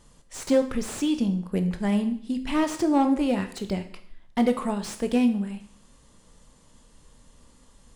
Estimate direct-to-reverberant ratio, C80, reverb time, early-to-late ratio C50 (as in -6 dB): 7.5 dB, 15.0 dB, 0.60 s, 11.5 dB